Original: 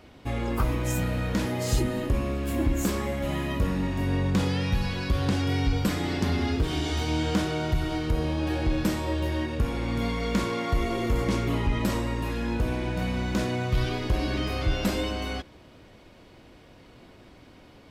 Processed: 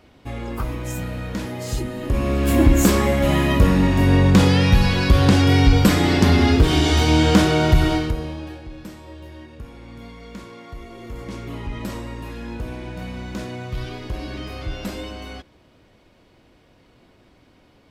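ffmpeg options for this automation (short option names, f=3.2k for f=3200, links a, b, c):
-af "volume=19dB,afade=t=in:st=1.99:d=0.51:silence=0.251189,afade=t=out:st=7.87:d=0.28:silence=0.281838,afade=t=out:st=8.15:d=0.47:silence=0.266073,afade=t=in:st=10.92:d=0.92:silence=0.398107"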